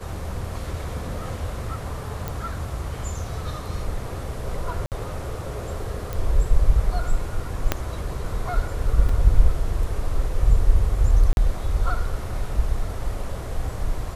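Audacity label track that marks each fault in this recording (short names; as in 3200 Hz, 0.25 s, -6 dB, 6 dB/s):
2.280000	2.280000	pop
4.860000	4.920000	gap 58 ms
6.130000	6.130000	pop
7.720000	7.720000	pop -5 dBFS
9.090000	9.090000	gap 3.2 ms
11.330000	11.370000	gap 41 ms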